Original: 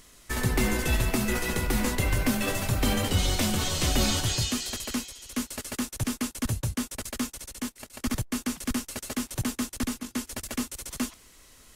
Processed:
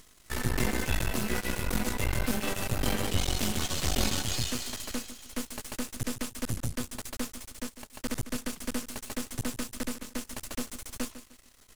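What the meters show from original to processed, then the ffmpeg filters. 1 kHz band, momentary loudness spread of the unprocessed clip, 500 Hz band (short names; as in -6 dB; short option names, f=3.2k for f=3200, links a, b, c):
-3.5 dB, 9 LU, -3.5 dB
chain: -af "aecho=1:1:151|302|453:0.224|0.0672|0.0201,aeval=exprs='max(val(0),0)':c=same"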